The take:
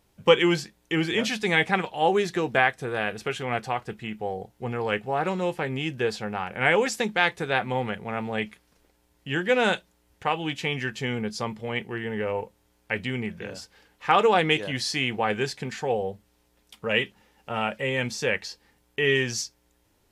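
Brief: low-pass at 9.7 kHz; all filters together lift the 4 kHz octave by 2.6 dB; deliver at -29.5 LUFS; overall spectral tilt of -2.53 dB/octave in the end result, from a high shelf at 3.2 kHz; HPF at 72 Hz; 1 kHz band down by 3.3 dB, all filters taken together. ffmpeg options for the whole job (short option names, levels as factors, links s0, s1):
-af "highpass=72,lowpass=9700,equalizer=f=1000:t=o:g=-4.5,highshelf=f=3200:g=-6,equalizer=f=4000:t=o:g=8.5,volume=0.75"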